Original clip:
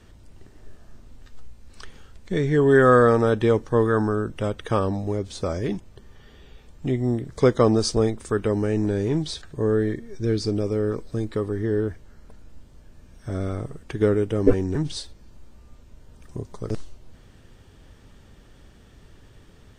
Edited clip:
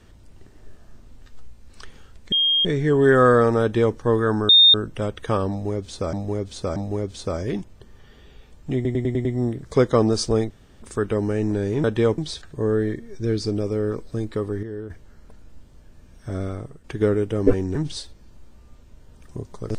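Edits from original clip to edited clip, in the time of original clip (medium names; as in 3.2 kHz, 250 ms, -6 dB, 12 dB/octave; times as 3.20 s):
2.32 s: add tone 3.23 kHz -16 dBFS 0.33 s
3.29–3.63 s: copy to 9.18 s
4.16 s: add tone 3.66 kHz -8.5 dBFS 0.25 s
4.92–5.55 s: loop, 3 plays
6.91 s: stutter 0.10 s, 6 plays
8.16 s: insert room tone 0.32 s
11.63–11.90 s: gain -9.5 dB
13.40–13.84 s: fade out, to -8.5 dB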